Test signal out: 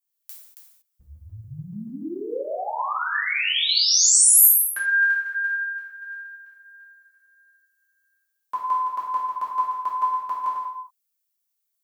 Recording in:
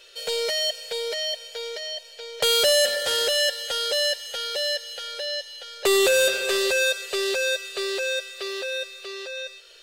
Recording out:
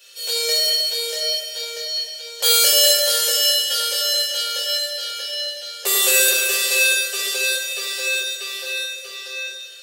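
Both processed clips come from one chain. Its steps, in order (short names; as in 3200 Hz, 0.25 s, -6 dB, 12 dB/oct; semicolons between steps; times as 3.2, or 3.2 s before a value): reverse delay 0.144 s, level -7 dB; RIAA curve recording; non-linear reverb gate 0.26 s falling, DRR -6.5 dB; gain -8.5 dB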